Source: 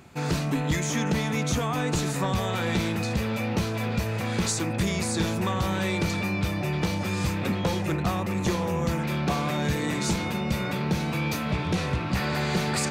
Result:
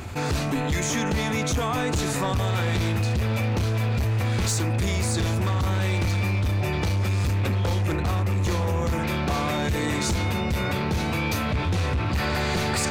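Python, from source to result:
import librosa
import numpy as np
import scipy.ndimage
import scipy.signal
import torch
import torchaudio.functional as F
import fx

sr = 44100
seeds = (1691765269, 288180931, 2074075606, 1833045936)

y = fx.low_shelf_res(x, sr, hz=120.0, db=6.0, q=3.0)
y = np.clip(y, -10.0 ** (-21.0 / 20.0), 10.0 ** (-21.0 / 20.0))
y = fx.env_flatten(y, sr, amount_pct=50)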